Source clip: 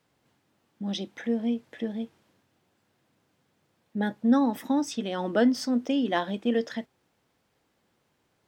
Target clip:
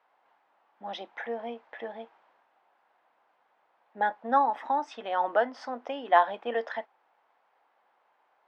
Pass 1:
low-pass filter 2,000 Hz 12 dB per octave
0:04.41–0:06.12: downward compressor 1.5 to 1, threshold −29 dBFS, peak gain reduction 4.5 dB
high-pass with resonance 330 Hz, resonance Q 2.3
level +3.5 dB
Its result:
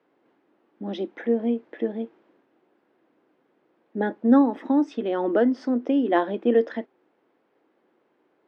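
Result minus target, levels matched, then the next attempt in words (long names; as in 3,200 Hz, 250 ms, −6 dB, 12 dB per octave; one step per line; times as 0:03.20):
250 Hz band +14.5 dB
low-pass filter 2,000 Hz 12 dB per octave
0:04.41–0:06.12: downward compressor 1.5 to 1, threshold −29 dBFS, peak gain reduction 4.5 dB
high-pass with resonance 810 Hz, resonance Q 2.3
level +3.5 dB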